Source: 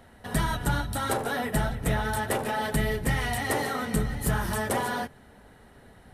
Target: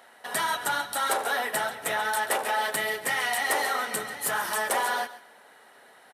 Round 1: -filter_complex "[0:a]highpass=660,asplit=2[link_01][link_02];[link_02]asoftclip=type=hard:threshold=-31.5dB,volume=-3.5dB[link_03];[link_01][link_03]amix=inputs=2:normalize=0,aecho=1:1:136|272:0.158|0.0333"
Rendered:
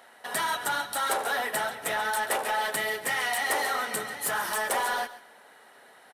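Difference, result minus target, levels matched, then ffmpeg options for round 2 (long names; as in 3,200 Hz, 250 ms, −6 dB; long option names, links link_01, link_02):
hard clipping: distortion +10 dB
-filter_complex "[0:a]highpass=660,asplit=2[link_01][link_02];[link_02]asoftclip=type=hard:threshold=-24.5dB,volume=-3.5dB[link_03];[link_01][link_03]amix=inputs=2:normalize=0,aecho=1:1:136|272:0.158|0.0333"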